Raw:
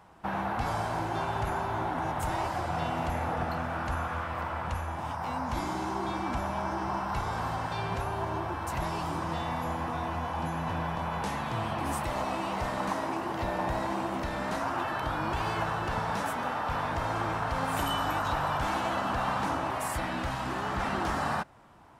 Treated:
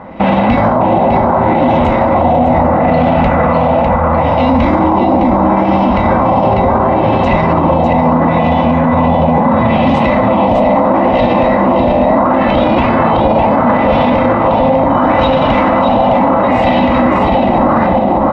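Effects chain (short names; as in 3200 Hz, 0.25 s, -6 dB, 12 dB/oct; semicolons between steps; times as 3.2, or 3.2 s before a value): on a send at -9 dB: reverb RT60 2.1 s, pre-delay 5 ms; on the sum: LFO low-pass sine 0.61 Hz 760–3000 Hz; bell 1600 Hz -10.5 dB 0.81 oct; feedback echo 0.721 s, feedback 22%, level -4 dB; tempo 1.2×; LPF 7500 Hz 24 dB/oct; small resonant body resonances 250/530/2000/3800 Hz, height 14 dB, ringing for 45 ms; maximiser +23 dB; gain -1.5 dB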